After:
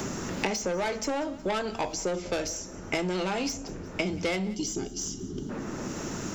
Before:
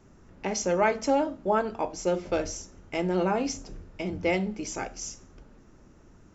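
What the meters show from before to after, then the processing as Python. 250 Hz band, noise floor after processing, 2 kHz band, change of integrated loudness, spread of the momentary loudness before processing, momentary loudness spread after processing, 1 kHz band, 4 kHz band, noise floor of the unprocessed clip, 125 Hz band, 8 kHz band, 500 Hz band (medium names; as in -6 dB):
-1.0 dB, -41 dBFS, +0.5 dB, -2.5 dB, 13 LU, 7 LU, -4.0 dB, +5.0 dB, -55 dBFS, +0.5 dB, no reading, -3.5 dB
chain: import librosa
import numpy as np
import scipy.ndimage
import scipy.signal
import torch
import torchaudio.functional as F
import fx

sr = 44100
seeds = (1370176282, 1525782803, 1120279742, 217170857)

y = fx.spec_box(x, sr, start_s=4.55, length_s=0.95, low_hz=450.0, high_hz=2800.0, gain_db=-19)
y = fx.high_shelf(y, sr, hz=3900.0, db=8.0)
y = 10.0 ** (-24.0 / 20.0) * np.tanh(y / 10.0 ** (-24.0 / 20.0))
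y = fx.echo_feedback(y, sr, ms=180, feedback_pct=29, wet_db=-23)
y = fx.band_squash(y, sr, depth_pct=100)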